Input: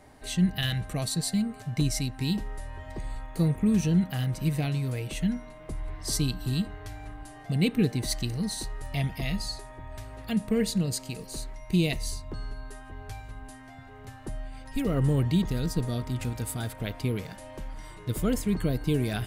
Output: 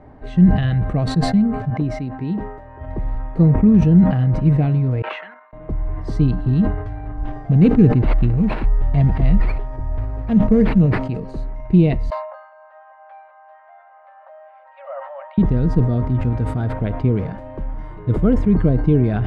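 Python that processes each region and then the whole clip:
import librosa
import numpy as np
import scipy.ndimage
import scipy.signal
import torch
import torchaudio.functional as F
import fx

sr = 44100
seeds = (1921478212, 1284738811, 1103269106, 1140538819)

y = fx.chain(x, sr, fx.highpass(hz=350.0, slope=6),
    fx.high_shelf(hz=3100.0, db=-9.5), at=(1.7, 2.81))
y = fx.chain(y, sr, fx.level_steps(step_db=10),
    fx.ladder_highpass(hz=980.0, resonance_pct=25),
    fx.spacing_loss(db_at_10k=36), at=(5.02, 5.53))
y = fx.chain(y, sr, fx.low_shelf(hz=60.0, db=11.5),
    fx.notch(hz=5100.0, q=26.0),
    fx.sample_hold(seeds[0], rate_hz=6700.0, jitter_pct=0), at=(7.17, 11.02))
y = fx.chain(y, sr, fx.cheby1_highpass(hz=550.0, order=10),
    fx.air_absorb(metres=470.0), at=(12.1, 15.38))
y = scipy.signal.sosfilt(scipy.signal.butter(2, 1300.0, 'lowpass', fs=sr, output='sos'), y)
y = fx.low_shelf(y, sr, hz=420.0, db=4.5)
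y = fx.sustainer(y, sr, db_per_s=66.0)
y = y * 10.0 ** (7.5 / 20.0)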